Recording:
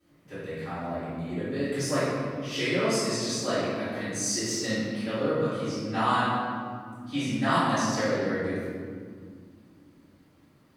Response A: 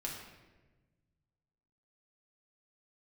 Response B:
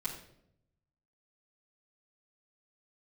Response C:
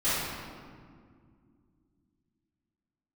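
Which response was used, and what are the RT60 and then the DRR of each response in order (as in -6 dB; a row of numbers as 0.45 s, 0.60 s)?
C; 1.2 s, 0.75 s, 2.1 s; -2.0 dB, -9.0 dB, -16.0 dB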